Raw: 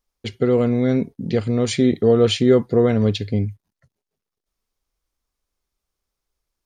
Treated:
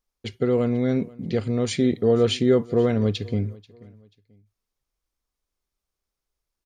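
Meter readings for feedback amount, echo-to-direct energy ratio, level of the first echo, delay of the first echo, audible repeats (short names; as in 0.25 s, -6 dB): 34%, -22.5 dB, -23.0 dB, 0.486 s, 2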